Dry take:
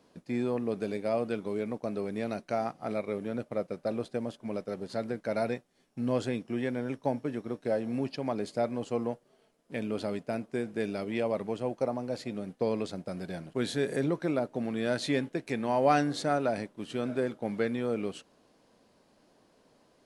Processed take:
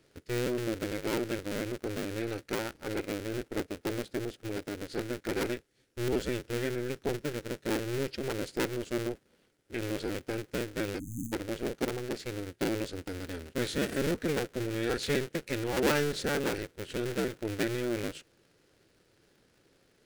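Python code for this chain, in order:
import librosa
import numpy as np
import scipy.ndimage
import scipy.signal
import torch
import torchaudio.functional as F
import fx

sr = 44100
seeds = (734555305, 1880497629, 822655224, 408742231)

y = fx.cycle_switch(x, sr, every=2, mode='inverted')
y = fx.band_shelf(y, sr, hz=860.0, db=-10.5, octaves=1.1)
y = fx.spec_erase(y, sr, start_s=10.99, length_s=0.33, low_hz=320.0, high_hz=6100.0)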